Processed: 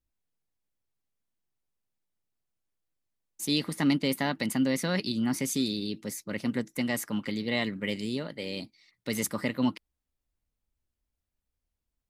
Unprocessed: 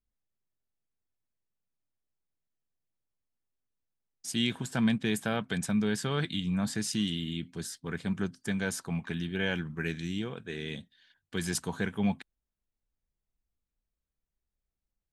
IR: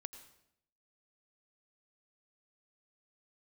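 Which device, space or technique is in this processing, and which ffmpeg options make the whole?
nightcore: -af "asetrate=55125,aresample=44100,volume=2dB"

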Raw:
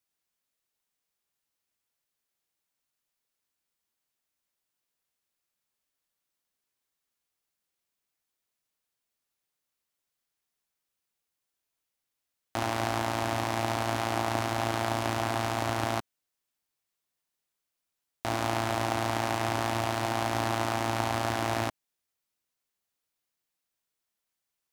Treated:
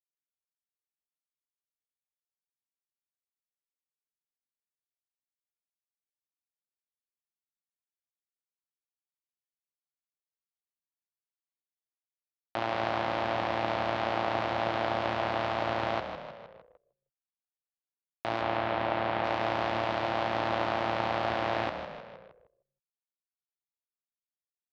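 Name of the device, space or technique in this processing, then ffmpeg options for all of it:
frequency-shifting delay pedal into a guitar cabinet: -filter_complex "[0:a]asettb=1/sr,asplit=3[link_01][link_02][link_03];[link_01]atrim=end=18.414[link_04];[link_02]atrim=start=18.41:end=19.24,asetpts=PTS-STARTPTS,afade=type=in:duration=0.004:curve=qsin,afade=type=out:start_time=0.826:duration=0.004:curve=qsin,acrossover=split=4300[link_05][link_06];[link_06]acompressor=threshold=-55dB:ratio=4:attack=1:release=60[link_07];[link_05][link_07]amix=inputs=2:normalize=0[link_08];[link_03]atrim=start=19.236[link_09];[link_04][link_08]acrossfade=duration=0.004:curve1=hsin:curve2=qsin[link_10];[link_10][link_09]acrossfade=duration=0.004:curve1=qsin:curve2=hsin,asplit=8[link_11][link_12][link_13][link_14][link_15][link_16][link_17][link_18];[link_12]adelay=155,afreqshift=-36,volume=-8.5dB[link_19];[link_13]adelay=310,afreqshift=-72,volume=-13.4dB[link_20];[link_14]adelay=465,afreqshift=-108,volume=-18.3dB[link_21];[link_15]adelay=620,afreqshift=-144,volume=-23.1dB[link_22];[link_16]adelay=775,afreqshift=-180,volume=-28dB[link_23];[link_17]adelay=930,afreqshift=-216,volume=-32.9dB[link_24];[link_18]adelay=1085,afreqshift=-252,volume=-37.8dB[link_25];[link_11][link_19][link_20][link_21][link_22][link_23][link_24][link_25]amix=inputs=8:normalize=0,highpass=100,equalizer=frequency=100:width_type=q:width=4:gain=-9,equalizer=frequency=260:width_type=q:width=4:gain=-8,equalizer=frequency=530:width_type=q:width=4:gain=5,lowpass=frequency=4000:width=0.5412,lowpass=frequency=4000:width=1.3066,anlmdn=0.00251,volume=-1dB"

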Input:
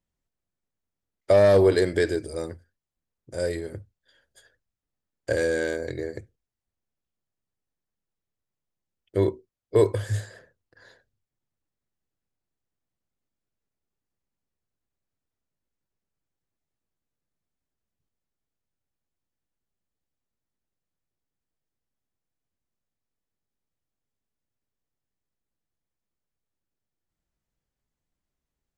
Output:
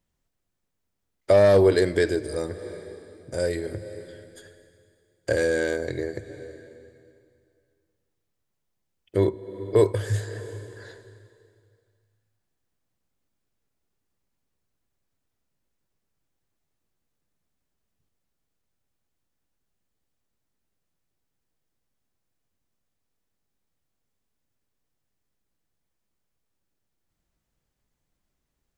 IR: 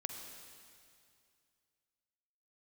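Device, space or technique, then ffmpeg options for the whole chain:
ducked reverb: -filter_complex "[0:a]asplit=3[link_01][link_02][link_03];[1:a]atrim=start_sample=2205[link_04];[link_02][link_04]afir=irnorm=-1:irlink=0[link_05];[link_03]apad=whole_len=1269170[link_06];[link_05][link_06]sidechaincompress=threshold=-38dB:ratio=8:attack=21:release=280,volume=2.5dB[link_07];[link_01][link_07]amix=inputs=2:normalize=0"

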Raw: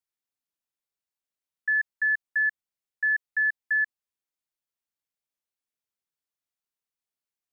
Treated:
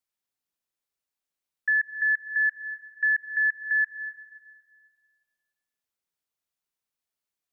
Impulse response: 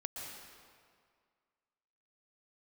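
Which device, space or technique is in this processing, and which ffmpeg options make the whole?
ducked reverb: -filter_complex "[0:a]asplit=3[link_01][link_02][link_03];[1:a]atrim=start_sample=2205[link_04];[link_02][link_04]afir=irnorm=-1:irlink=0[link_05];[link_03]apad=whole_len=331833[link_06];[link_05][link_06]sidechaincompress=threshold=-28dB:ratio=8:attack=16:release=134,volume=-7dB[link_07];[link_01][link_07]amix=inputs=2:normalize=0"

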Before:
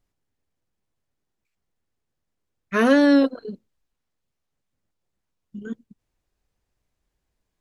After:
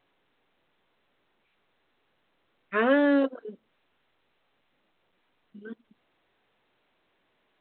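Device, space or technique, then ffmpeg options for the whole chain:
telephone: -af "highpass=310,lowpass=3400,volume=-3.5dB" -ar 8000 -c:a pcm_alaw

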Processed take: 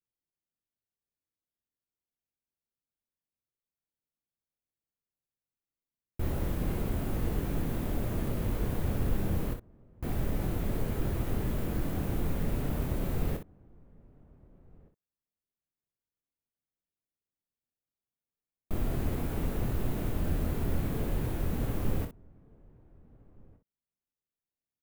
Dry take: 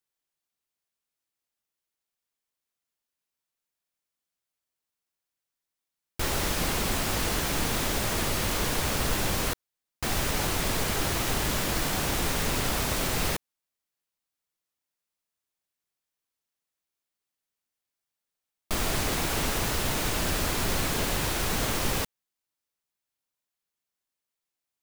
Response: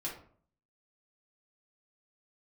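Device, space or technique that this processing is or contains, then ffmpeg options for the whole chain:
slapback doubling: -filter_complex "[0:a]firequalizer=gain_entry='entry(120,0);entry(910,-14);entry(5200,-26);entry(14000,-13)':delay=0.05:min_phase=1,asplit=2[link_01][link_02];[link_02]adelay=1516,volume=-26dB,highshelf=frequency=4000:gain=-34.1[link_03];[link_01][link_03]amix=inputs=2:normalize=0,asplit=3[link_04][link_05][link_06];[link_05]adelay=25,volume=-7.5dB[link_07];[link_06]adelay=61,volume=-8.5dB[link_08];[link_04][link_07][link_08]amix=inputs=3:normalize=0"

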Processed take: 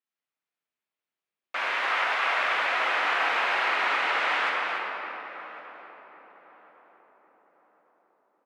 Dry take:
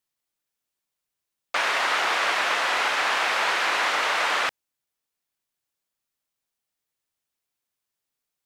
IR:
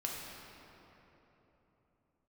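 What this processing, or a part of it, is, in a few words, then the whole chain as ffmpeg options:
stadium PA: -filter_complex "[0:a]asettb=1/sr,asplit=3[link_01][link_02][link_03];[link_01]atrim=end=1.864[link_04];[link_02]atrim=start=1.86:end=2.36,asetpts=PTS-STARTPTS,afade=type=in:duration=0.004:curve=qsin,afade=type=out:start_time=0.496:duration=0.004:curve=qsin,highpass=440[link_05];[link_03]atrim=start=2.356[link_06];[link_04][link_05]acrossfade=duration=0.004:curve1=hsin:curve2=qsin[link_07];[link_07][link_06]acrossfade=duration=0.004:curve1=qsin:curve2=hsin,asettb=1/sr,asplit=3[link_08][link_09][link_10];[link_08]atrim=end=3.694[link_11];[link_09]atrim=start=3.69:end=4.46,asetpts=PTS-STARTPTS,afade=type=in:duration=0.004:curve=qsin,afade=type=out:start_time=0.766:duration=0.004:curve=qsin,lowpass=11000[link_12];[link_10]atrim=start=4.456[link_13];[link_11][link_12]acrossfade=duration=0.004:curve1=hsin:curve2=qsin[link_14];[link_14][link_13]acrossfade=duration=0.004:curve1=qsin:curve2=hsin,highpass=frequency=150:width=0.5412,highpass=frequency=150:width=1.3066,bass=frequency=250:gain=-3,treble=frequency=4000:gain=-11,equalizer=frequency=2300:width_type=o:width=1.5:gain=4,aecho=1:1:218.7|285.7:0.282|0.398[link_15];[1:a]atrim=start_sample=2205[link_16];[link_15][link_16]afir=irnorm=-1:irlink=0,asplit=2[link_17][link_18];[link_18]adelay=1103,lowpass=frequency=860:poles=1,volume=-13dB,asplit=2[link_19][link_20];[link_20]adelay=1103,lowpass=frequency=860:poles=1,volume=0.47,asplit=2[link_21][link_22];[link_22]adelay=1103,lowpass=frequency=860:poles=1,volume=0.47,asplit=2[link_23][link_24];[link_24]adelay=1103,lowpass=frequency=860:poles=1,volume=0.47,asplit=2[link_25][link_26];[link_26]adelay=1103,lowpass=frequency=860:poles=1,volume=0.47[link_27];[link_17][link_19][link_21][link_23][link_25][link_27]amix=inputs=6:normalize=0,volume=-6.5dB"

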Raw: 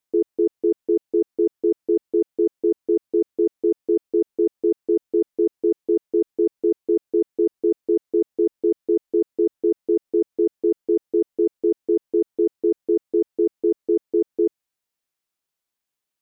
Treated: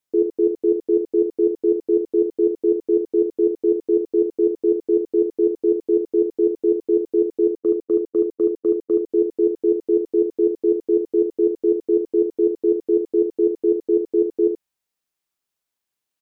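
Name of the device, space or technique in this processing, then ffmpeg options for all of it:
slapback doubling: -filter_complex "[0:a]asplit=3[link_01][link_02][link_03];[link_01]afade=type=out:start_time=7.42:duration=0.02[link_04];[link_02]agate=range=-23dB:threshold=-20dB:ratio=16:detection=peak,afade=type=in:start_time=7.42:duration=0.02,afade=type=out:start_time=9.08:duration=0.02[link_05];[link_03]afade=type=in:start_time=9.08:duration=0.02[link_06];[link_04][link_05][link_06]amix=inputs=3:normalize=0,asplit=3[link_07][link_08][link_09];[link_08]adelay=38,volume=-8.5dB[link_10];[link_09]adelay=75,volume=-6.5dB[link_11];[link_07][link_10][link_11]amix=inputs=3:normalize=0"

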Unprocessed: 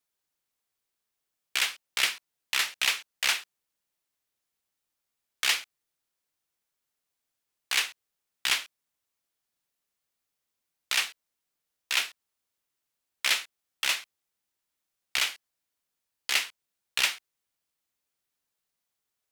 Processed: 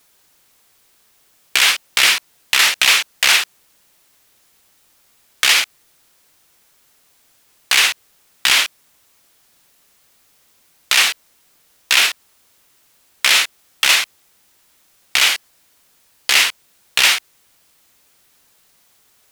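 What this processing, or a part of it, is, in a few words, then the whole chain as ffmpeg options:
loud club master: -af "acompressor=threshold=-29dB:ratio=2,asoftclip=type=hard:threshold=-17dB,alimiter=level_in=28dB:limit=-1dB:release=50:level=0:latency=1,volume=-1dB"

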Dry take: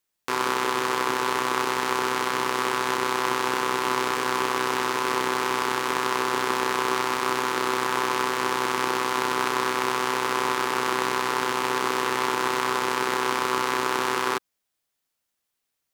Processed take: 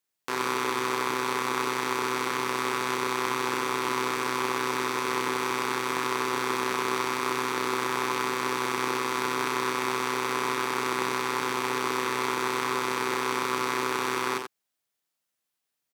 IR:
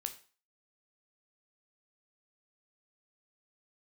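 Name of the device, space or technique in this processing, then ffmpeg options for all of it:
slapback doubling: -filter_complex "[0:a]highpass=89,asplit=3[link_01][link_02][link_03];[link_02]adelay=39,volume=-8.5dB[link_04];[link_03]adelay=86,volume=-7dB[link_05];[link_01][link_04][link_05]amix=inputs=3:normalize=0,volume=-4dB"

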